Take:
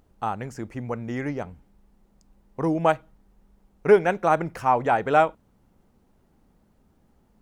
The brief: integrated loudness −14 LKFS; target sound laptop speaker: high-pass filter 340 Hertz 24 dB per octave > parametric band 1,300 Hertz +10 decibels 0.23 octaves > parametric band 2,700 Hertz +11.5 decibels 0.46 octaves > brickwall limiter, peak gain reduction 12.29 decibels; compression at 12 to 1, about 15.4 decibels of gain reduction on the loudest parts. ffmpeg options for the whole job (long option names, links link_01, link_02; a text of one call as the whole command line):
ffmpeg -i in.wav -af "acompressor=threshold=-26dB:ratio=12,highpass=frequency=340:width=0.5412,highpass=frequency=340:width=1.3066,equalizer=frequency=1300:width_type=o:width=0.23:gain=10,equalizer=frequency=2700:width_type=o:width=0.46:gain=11.5,volume=24dB,alimiter=limit=-2.5dB:level=0:latency=1" out.wav